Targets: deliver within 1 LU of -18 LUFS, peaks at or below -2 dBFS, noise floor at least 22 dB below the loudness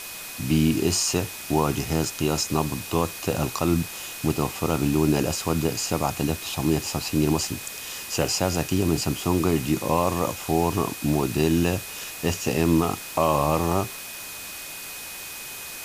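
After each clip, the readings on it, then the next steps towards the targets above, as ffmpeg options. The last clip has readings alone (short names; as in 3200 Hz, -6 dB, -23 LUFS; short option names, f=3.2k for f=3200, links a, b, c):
steady tone 2500 Hz; tone level -42 dBFS; noise floor -37 dBFS; noise floor target -47 dBFS; loudness -25.0 LUFS; peak -7.0 dBFS; loudness target -18.0 LUFS
-> -af "bandreject=f=2.5k:w=30"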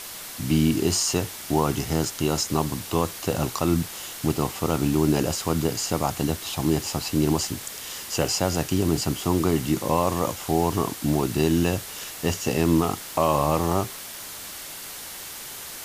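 steady tone none; noise floor -38 dBFS; noise floor target -47 dBFS
-> -af "afftdn=nr=9:nf=-38"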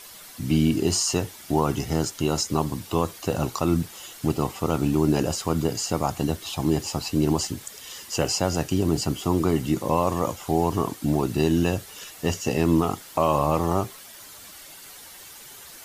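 noise floor -44 dBFS; noise floor target -47 dBFS
-> -af "afftdn=nr=6:nf=-44"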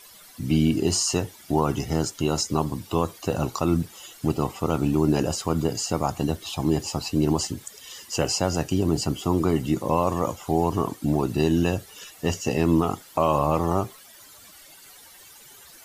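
noise floor -49 dBFS; loudness -25.0 LUFS; peak -7.0 dBFS; loudness target -18.0 LUFS
-> -af "volume=7dB,alimiter=limit=-2dB:level=0:latency=1"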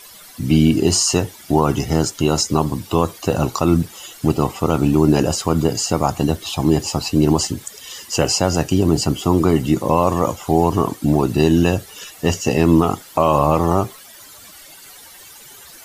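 loudness -18.0 LUFS; peak -2.0 dBFS; noise floor -42 dBFS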